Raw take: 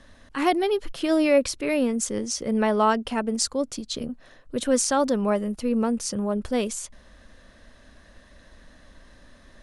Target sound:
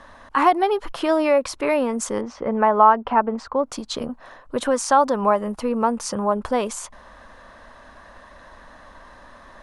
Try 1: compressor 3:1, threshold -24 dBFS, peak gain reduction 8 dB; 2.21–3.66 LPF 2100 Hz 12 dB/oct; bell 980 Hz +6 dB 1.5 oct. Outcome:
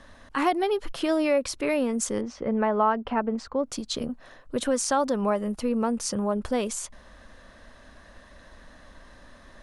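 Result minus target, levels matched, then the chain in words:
1000 Hz band -4.0 dB
compressor 3:1, threshold -24 dBFS, peak gain reduction 8 dB; 2.21–3.66 LPF 2100 Hz 12 dB/oct; bell 980 Hz +17.5 dB 1.5 oct

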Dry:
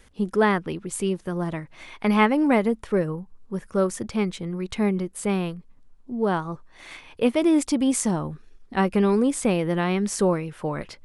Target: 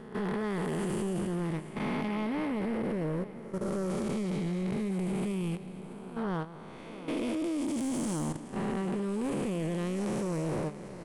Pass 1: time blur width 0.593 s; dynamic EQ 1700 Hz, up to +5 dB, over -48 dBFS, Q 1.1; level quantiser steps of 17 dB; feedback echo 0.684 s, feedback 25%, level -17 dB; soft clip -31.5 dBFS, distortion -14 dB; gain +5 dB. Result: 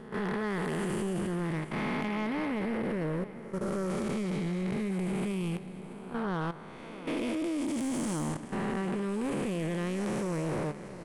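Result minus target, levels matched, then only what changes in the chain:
2000 Hz band +3.5 dB
remove: dynamic EQ 1700 Hz, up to +5 dB, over -48 dBFS, Q 1.1

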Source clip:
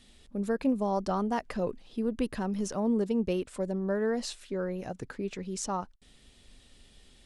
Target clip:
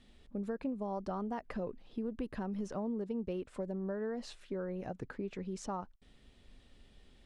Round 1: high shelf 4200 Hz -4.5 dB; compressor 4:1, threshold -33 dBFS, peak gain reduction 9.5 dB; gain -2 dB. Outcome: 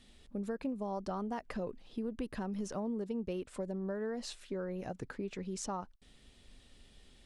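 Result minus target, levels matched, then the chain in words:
8000 Hz band +7.5 dB
high shelf 4200 Hz -15.5 dB; compressor 4:1, threshold -33 dBFS, peak gain reduction 9.5 dB; gain -2 dB

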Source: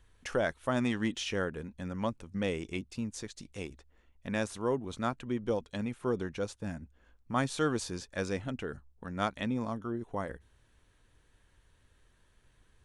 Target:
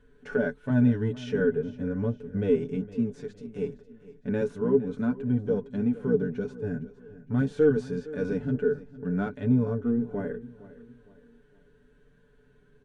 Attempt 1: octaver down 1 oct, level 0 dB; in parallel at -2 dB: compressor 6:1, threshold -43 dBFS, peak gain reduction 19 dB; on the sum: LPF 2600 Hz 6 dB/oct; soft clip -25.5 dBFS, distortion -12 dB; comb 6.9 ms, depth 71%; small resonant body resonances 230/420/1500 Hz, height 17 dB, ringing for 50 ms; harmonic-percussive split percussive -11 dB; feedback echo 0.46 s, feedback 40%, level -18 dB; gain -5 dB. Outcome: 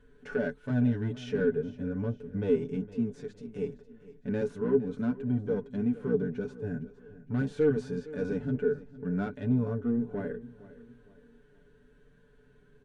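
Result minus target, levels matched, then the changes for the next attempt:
soft clip: distortion +12 dB; compressor: peak gain reduction +6 dB
change: compressor 6:1, threshold -35.5 dBFS, peak gain reduction 12.5 dB; change: soft clip -15.5 dBFS, distortion -24 dB

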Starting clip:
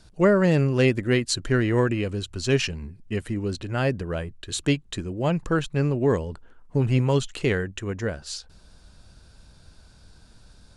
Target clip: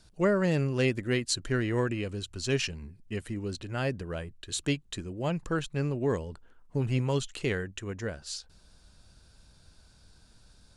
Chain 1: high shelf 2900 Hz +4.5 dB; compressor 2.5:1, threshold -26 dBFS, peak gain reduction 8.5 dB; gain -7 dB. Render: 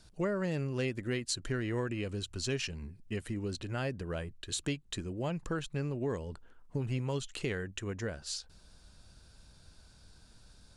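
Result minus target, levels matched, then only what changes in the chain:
compressor: peak gain reduction +8.5 dB
remove: compressor 2.5:1, threshold -26 dBFS, peak gain reduction 8.5 dB

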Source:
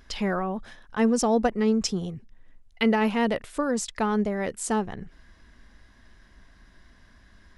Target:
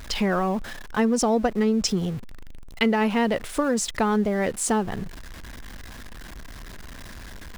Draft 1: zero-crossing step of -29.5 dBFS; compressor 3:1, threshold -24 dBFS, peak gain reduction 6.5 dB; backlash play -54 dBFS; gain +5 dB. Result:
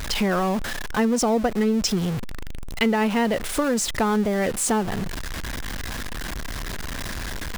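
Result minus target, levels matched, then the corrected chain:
zero-crossing step: distortion +10 dB
zero-crossing step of -40.5 dBFS; compressor 3:1, threshold -24 dBFS, peak gain reduction 6 dB; backlash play -54 dBFS; gain +5 dB

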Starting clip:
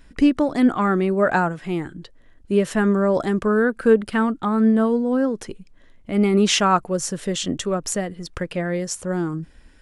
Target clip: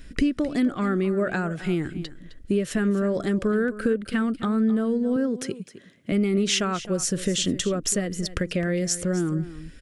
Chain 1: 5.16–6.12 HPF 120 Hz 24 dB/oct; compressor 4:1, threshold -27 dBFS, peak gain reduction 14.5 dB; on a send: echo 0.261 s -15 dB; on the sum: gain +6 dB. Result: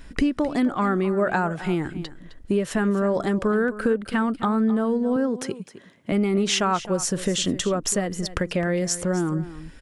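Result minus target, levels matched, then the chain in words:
1000 Hz band +6.0 dB
5.16–6.12 HPF 120 Hz 24 dB/oct; compressor 4:1, threshold -27 dBFS, peak gain reduction 14.5 dB; bell 900 Hz -13.5 dB 0.74 oct; on a send: echo 0.261 s -15 dB; on the sum: gain +6 dB

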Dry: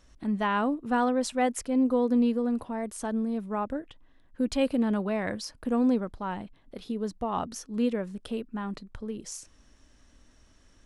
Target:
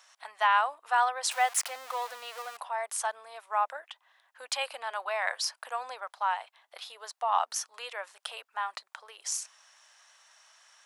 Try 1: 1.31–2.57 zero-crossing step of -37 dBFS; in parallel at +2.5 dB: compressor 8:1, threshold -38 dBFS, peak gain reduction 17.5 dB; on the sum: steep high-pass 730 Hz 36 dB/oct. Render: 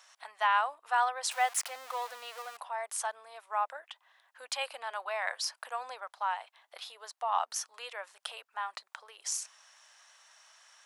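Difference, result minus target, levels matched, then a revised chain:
compressor: peak gain reduction +9 dB
1.31–2.57 zero-crossing step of -37 dBFS; in parallel at +2.5 dB: compressor 8:1, threshold -27.5 dBFS, peak gain reduction 8.5 dB; on the sum: steep high-pass 730 Hz 36 dB/oct

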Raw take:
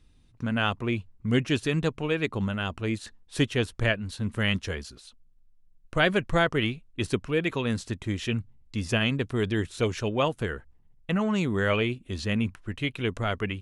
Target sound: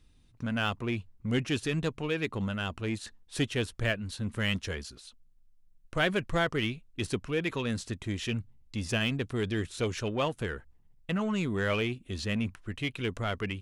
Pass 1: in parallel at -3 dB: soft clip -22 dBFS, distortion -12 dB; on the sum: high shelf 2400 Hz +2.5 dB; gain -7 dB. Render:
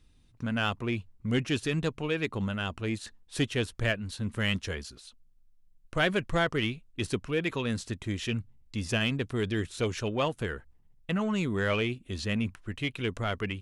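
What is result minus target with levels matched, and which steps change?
soft clip: distortion -5 dB
change: soft clip -28 dBFS, distortion -7 dB

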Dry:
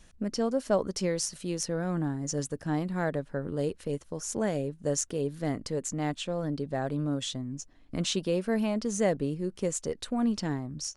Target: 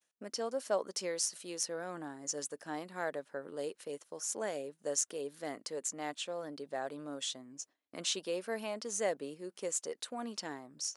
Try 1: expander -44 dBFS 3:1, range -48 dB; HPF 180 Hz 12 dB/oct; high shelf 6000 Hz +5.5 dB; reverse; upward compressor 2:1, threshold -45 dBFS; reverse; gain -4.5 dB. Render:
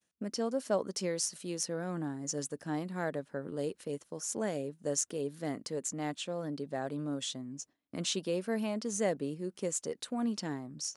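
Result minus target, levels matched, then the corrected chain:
250 Hz band +6.5 dB
expander -44 dBFS 3:1, range -48 dB; HPF 460 Hz 12 dB/oct; high shelf 6000 Hz +5.5 dB; reverse; upward compressor 2:1, threshold -45 dBFS; reverse; gain -4.5 dB

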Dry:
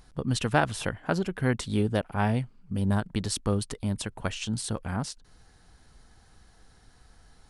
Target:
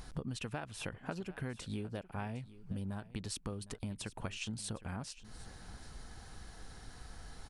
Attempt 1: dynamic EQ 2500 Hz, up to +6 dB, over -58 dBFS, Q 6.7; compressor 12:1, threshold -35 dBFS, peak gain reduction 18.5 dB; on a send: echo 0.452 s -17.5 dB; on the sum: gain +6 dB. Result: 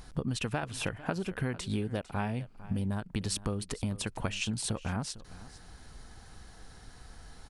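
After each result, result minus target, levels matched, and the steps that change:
echo 0.307 s early; compressor: peak gain reduction -8 dB
change: echo 0.759 s -17.5 dB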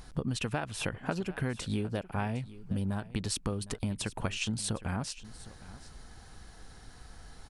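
compressor: peak gain reduction -8 dB
change: compressor 12:1, threshold -43.5 dBFS, peak gain reduction 26.5 dB

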